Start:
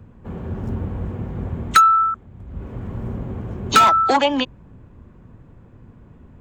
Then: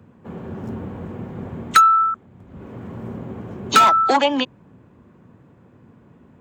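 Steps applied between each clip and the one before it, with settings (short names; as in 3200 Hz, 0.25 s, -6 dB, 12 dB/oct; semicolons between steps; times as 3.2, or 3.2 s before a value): HPF 150 Hz 12 dB/oct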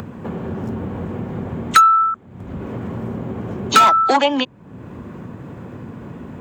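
upward compressor, threshold -21 dBFS; gain +1.5 dB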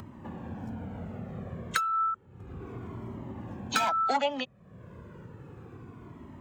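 cascading flanger falling 0.32 Hz; gain -8 dB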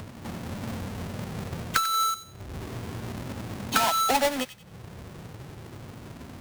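half-waves squared off; thin delay 92 ms, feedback 32%, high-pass 1700 Hz, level -12 dB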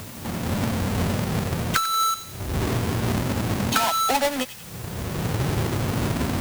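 recorder AGC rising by 17 dB/s; in parallel at -3.5 dB: requantised 6-bit, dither triangular; on the sum: gain -3 dB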